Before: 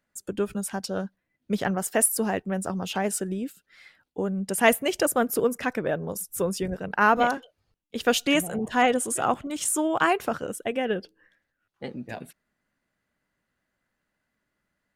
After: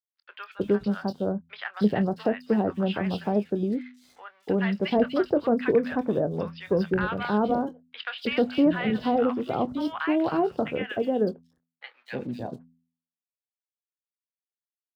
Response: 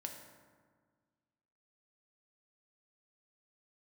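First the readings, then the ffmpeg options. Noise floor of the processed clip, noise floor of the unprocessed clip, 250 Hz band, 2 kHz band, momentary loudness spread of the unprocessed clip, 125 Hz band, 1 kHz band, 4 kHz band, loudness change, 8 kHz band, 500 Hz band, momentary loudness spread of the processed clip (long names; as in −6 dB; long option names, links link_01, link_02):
below −85 dBFS, −80 dBFS, +3.5 dB, −5.5 dB, 14 LU, +3.5 dB, −4.5 dB, −5.0 dB, −0.5 dB, below −30 dB, +1.0 dB, 12 LU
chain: -filter_complex "[0:a]volume=13.5dB,asoftclip=hard,volume=-13.5dB,deesser=0.65,aresample=11025,aresample=44100,aeval=exprs='sgn(val(0))*max(abs(val(0))-0.00126,0)':channel_layout=same,highpass=55,acrossover=split=1100|3600[link_01][link_02][link_03];[link_03]adelay=240[link_04];[link_01]adelay=310[link_05];[link_05][link_02][link_04]amix=inputs=3:normalize=0,acrossover=split=500[link_06][link_07];[link_07]acompressor=threshold=-37dB:ratio=2.5[link_08];[link_06][link_08]amix=inputs=2:normalize=0,asplit=2[link_09][link_10];[link_10]adelay=24,volume=-13.5dB[link_11];[link_09][link_11]amix=inputs=2:normalize=0,bandreject=frequency=83.24:width_type=h:width=4,bandreject=frequency=166.48:width_type=h:width=4,bandreject=frequency=249.72:width_type=h:width=4,volume=4.5dB"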